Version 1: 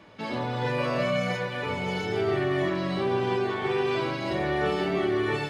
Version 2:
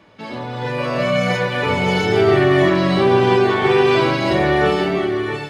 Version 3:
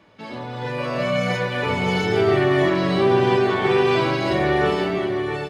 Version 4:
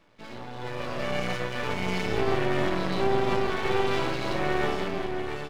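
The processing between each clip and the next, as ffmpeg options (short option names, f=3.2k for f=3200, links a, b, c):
-af "dynaudnorm=f=460:g=5:m=11.5dB,volume=1.5dB"
-filter_complex "[0:a]asplit=2[a][b];[b]adelay=758,volume=-13dB,highshelf=f=4k:g=-17.1[c];[a][c]amix=inputs=2:normalize=0,volume=-4dB"
-af "aeval=exprs='max(val(0),0)':c=same,volume=-3.5dB"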